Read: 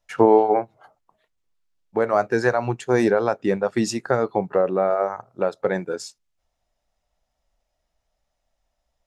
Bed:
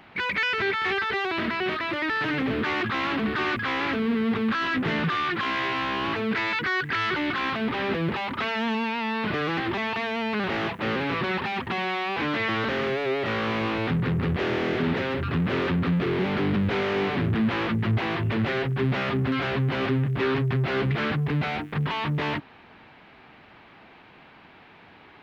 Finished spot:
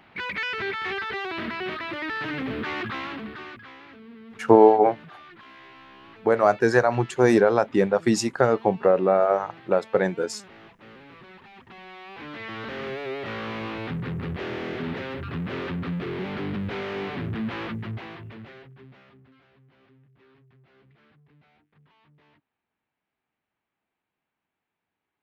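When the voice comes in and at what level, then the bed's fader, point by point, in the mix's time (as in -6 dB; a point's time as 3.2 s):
4.30 s, +1.0 dB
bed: 2.9 s -4 dB
3.86 s -21 dB
11.42 s -21 dB
12.9 s -6 dB
17.68 s -6 dB
19.47 s -34.5 dB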